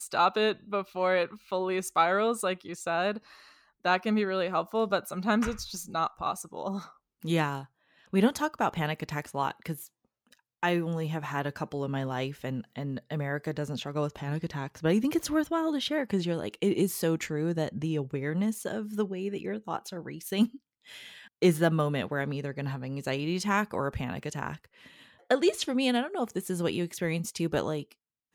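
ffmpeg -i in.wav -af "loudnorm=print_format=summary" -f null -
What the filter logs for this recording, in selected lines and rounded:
Input Integrated:    -30.2 LUFS
Input True Peak:     -10.9 dBTP
Input LRA:             3.9 LU
Input Threshold:     -40.6 LUFS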